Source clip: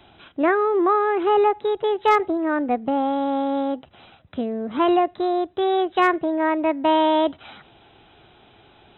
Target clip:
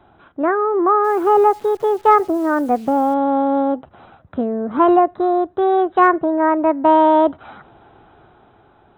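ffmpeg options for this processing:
-filter_complex "[0:a]highshelf=f=1900:t=q:w=1.5:g=-11,dynaudnorm=f=210:g=9:m=2,asettb=1/sr,asplit=3[s0][s1][s2];[s0]atrim=end=1.044[s3];[s1]atrim=start=1.04:end=3.14,asetpts=PTS-STARTPTS,afade=t=in:d=0.004:c=qsin,afade=t=out:st=2.096:d=0.004:c=qsin,acrusher=bits=8:dc=4:mix=0:aa=0.000001[s4];[s2]atrim=start=3.136[s5];[s3][s4]acrossfade=d=0.004:c1=hsin:c2=qsin[s6];[s6][s5]acrossfade=d=0.004:c1=qsin:c2=hsin"

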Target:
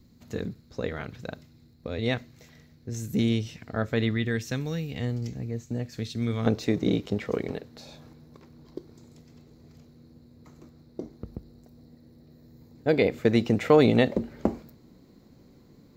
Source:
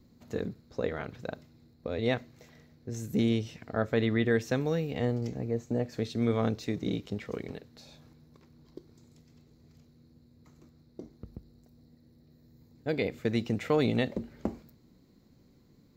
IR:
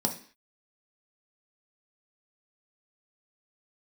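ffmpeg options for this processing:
-af "asetnsamples=n=441:p=0,asendcmd='4.11 equalizer g -12;6.46 equalizer g 4',equalizer=f=610:t=o:w=2.7:g=-6,volume=1.78"

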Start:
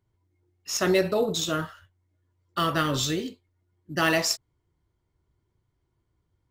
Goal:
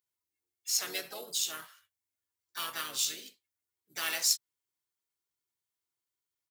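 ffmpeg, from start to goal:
-filter_complex "[0:a]asplit=3[s0][s1][s2];[s1]asetrate=35002,aresample=44100,atempo=1.25992,volume=0.447[s3];[s2]asetrate=55563,aresample=44100,atempo=0.793701,volume=0.355[s4];[s0][s3][s4]amix=inputs=3:normalize=0,aderivative"

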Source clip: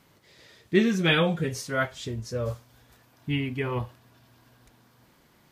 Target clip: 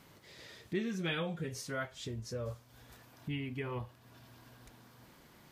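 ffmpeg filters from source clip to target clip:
-af "acompressor=threshold=0.00501:ratio=2,volume=1.12"

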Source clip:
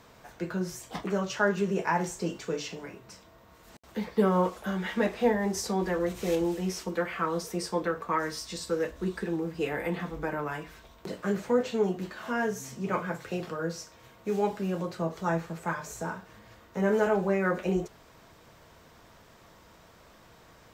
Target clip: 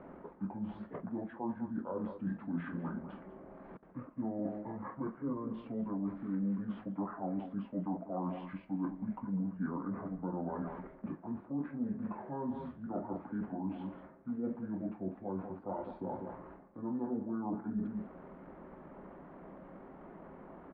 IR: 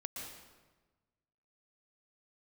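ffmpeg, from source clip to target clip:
-filter_complex "[0:a]asetrate=25476,aresample=44100,atempo=1.73107,asplit=2[s0][s1];[s1]adelay=198.3,volume=0.178,highshelf=f=4000:g=-4.46[s2];[s0][s2]amix=inputs=2:normalize=0,areverse,acompressor=threshold=0.00708:ratio=5,areverse,lowpass=f=1600:w=0.5412,lowpass=f=1600:w=1.3066,lowshelf=f=140:t=q:w=3:g=-7.5,volume=1.78"

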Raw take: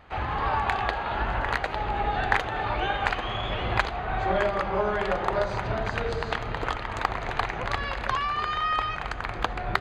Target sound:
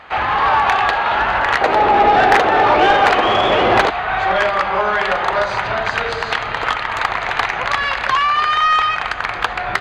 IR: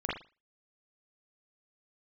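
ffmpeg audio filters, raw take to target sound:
-filter_complex "[0:a]asetnsamples=n=441:p=0,asendcmd='1.61 equalizer g 10;3.9 equalizer g -7.5',equalizer=f=350:t=o:w=2.4:g=-3,asplit=2[s0][s1];[s1]highpass=f=720:p=1,volume=14.1,asoftclip=type=tanh:threshold=0.841[s2];[s0][s2]amix=inputs=2:normalize=0,lowpass=f=3500:p=1,volume=0.501"

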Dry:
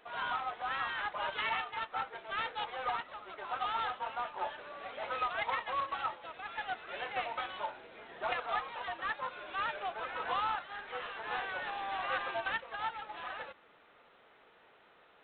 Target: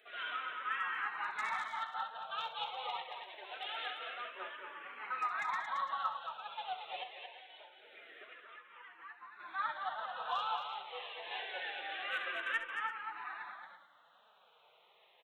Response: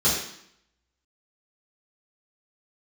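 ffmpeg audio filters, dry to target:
-filter_complex "[0:a]highpass=f=630:p=1,highshelf=f=3500:g=7.5,asettb=1/sr,asplit=3[s0][s1][s2];[s0]atrim=end=7.034[s3];[s1]atrim=start=7.03:end=9.4,asetpts=PTS-STARTPTS,afade=t=in:d=0.004:c=qsin,afade=t=out:st=2.366:d=0.004:c=qsin,acompressor=threshold=0.00398:ratio=12[s4];[s2]atrim=start=9.396[s5];[s3][s4]acrossfade=d=0.004:c1=hsin:c2=qsin[s6];[s6][s5]acrossfade=d=0.004:c1=qsin:c2=hsin,volume=17.8,asoftclip=hard,volume=0.0562,flanger=delay=4.5:depth=2.5:regen=33:speed=1.4:shape=triangular,aecho=1:1:66|225|337:0.266|0.501|0.237,asplit=2[s7][s8];[s8]afreqshift=-0.25[s9];[s7][s9]amix=inputs=2:normalize=1,volume=1.33"

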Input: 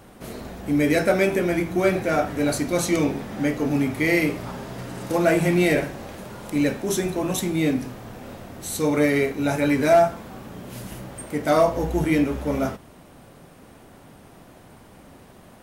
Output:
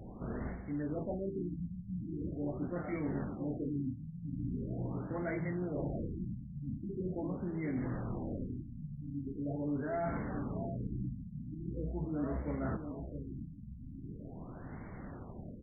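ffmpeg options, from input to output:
-filter_complex "[0:a]equalizer=f=670:w=0.47:g=-8.5,areverse,acompressor=threshold=0.0126:ratio=12,areverse,asplit=2[s0][s1];[s1]adelay=673,lowpass=f=2000:p=1,volume=0.376,asplit=2[s2][s3];[s3]adelay=673,lowpass=f=2000:p=1,volume=0.46,asplit=2[s4][s5];[s5]adelay=673,lowpass=f=2000:p=1,volume=0.46,asplit=2[s6][s7];[s7]adelay=673,lowpass=f=2000:p=1,volume=0.46,asplit=2[s8][s9];[s9]adelay=673,lowpass=f=2000:p=1,volume=0.46[s10];[s0][s2][s4][s6][s8][s10]amix=inputs=6:normalize=0,afftfilt=real='re*lt(b*sr/1024,250*pow(2300/250,0.5+0.5*sin(2*PI*0.42*pts/sr)))':imag='im*lt(b*sr/1024,250*pow(2300/250,0.5+0.5*sin(2*PI*0.42*pts/sr)))':win_size=1024:overlap=0.75,volume=1.68"

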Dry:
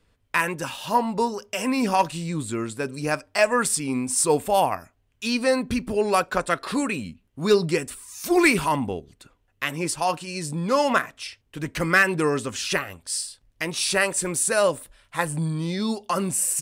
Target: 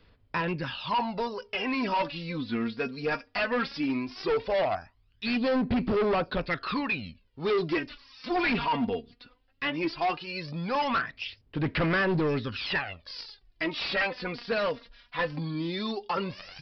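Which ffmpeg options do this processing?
-filter_complex "[0:a]aemphasis=mode=production:type=75kf,aphaser=in_gain=1:out_gain=1:delay=4.3:decay=0.66:speed=0.17:type=sinusoidal,aresample=11025,asoftclip=type=hard:threshold=0.119,aresample=44100,acrossover=split=3600[s0][s1];[s1]acompressor=threshold=0.00316:ratio=4:attack=1:release=60[s2];[s0][s2]amix=inputs=2:normalize=0,volume=0.596"

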